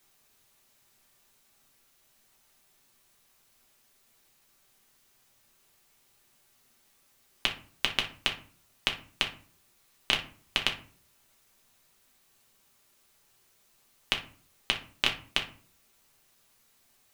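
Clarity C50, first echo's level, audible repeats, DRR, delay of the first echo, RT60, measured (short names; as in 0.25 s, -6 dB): 10.5 dB, none, none, 1.0 dB, none, 0.45 s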